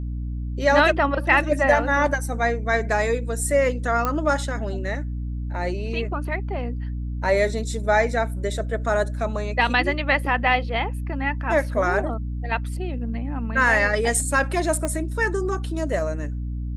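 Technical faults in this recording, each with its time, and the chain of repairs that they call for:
mains hum 60 Hz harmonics 5 −28 dBFS
0:04.05: click −10 dBFS
0:14.85: click −12 dBFS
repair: click removal
hum removal 60 Hz, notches 5

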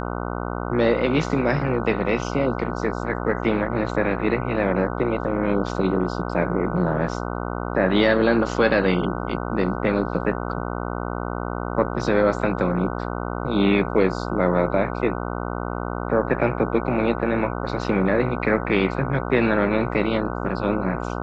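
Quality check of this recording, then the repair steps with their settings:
mains buzz 60 Hz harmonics 25 −28 dBFS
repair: hum removal 60 Hz, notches 25

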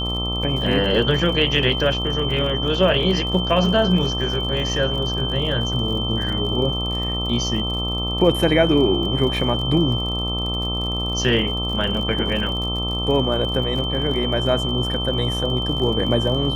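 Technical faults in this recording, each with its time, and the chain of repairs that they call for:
mains buzz 60 Hz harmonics 22 −26 dBFS
surface crackle 54 per second −29 dBFS
whistle 3,100 Hz −25 dBFS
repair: click removal
hum removal 60 Hz, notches 22
notch filter 3,100 Hz, Q 30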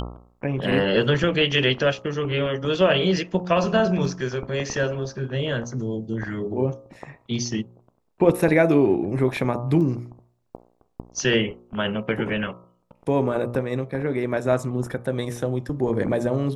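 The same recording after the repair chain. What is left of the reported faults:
none of them is left

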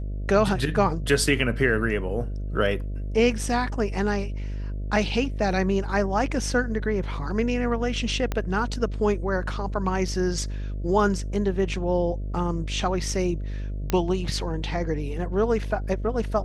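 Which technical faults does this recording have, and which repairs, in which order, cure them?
mains buzz 50 Hz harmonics 13 −30 dBFS
0:08.32: click −13 dBFS
0:13.90: click −10 dBFS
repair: click removal
hum removal 50 Hz, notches 13

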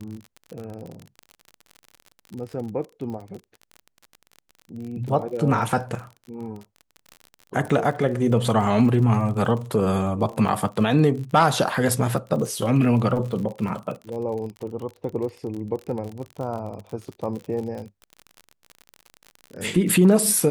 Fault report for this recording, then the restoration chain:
surface crackle 43 per second −31 dBFS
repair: click removal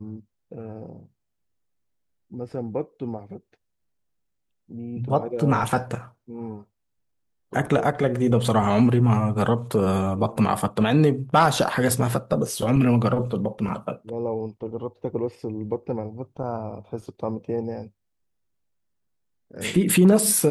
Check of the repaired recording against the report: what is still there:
none of them is left

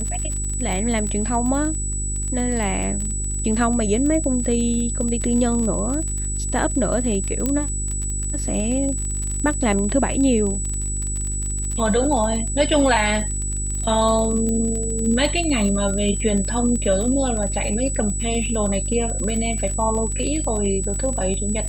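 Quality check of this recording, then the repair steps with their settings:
surface crackle 29 per second −25 dBFS
mains hum 50 Hz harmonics 8 −26 dBFS
whistle 7,900 Hz −27 dBFS
0:07.46: click −8 dBFS
0:14.49: click −14 dBFS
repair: click removal
notch filter 7,900 Hz, Q 30
hum removal 50 Hz, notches 8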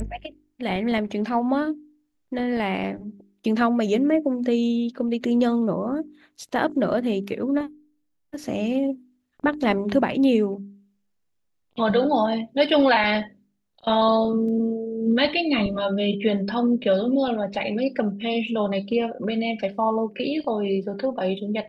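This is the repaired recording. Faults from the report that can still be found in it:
0:14.49: click

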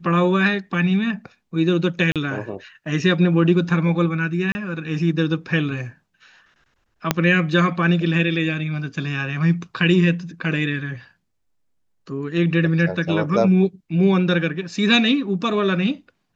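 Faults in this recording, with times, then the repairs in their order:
0:02.12–0:02.16: drop-out 37 ms
0:04.52–0:04.55: drop-out 30 ms
0:07.11: click −1 dBFS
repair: click removal
repair the gap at 0:02.12, 37 ms
repair the gap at 0:04.52, 30 ms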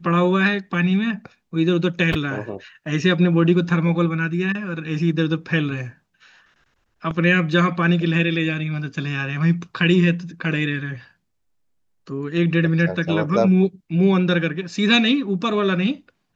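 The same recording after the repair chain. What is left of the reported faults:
0:07.11: click

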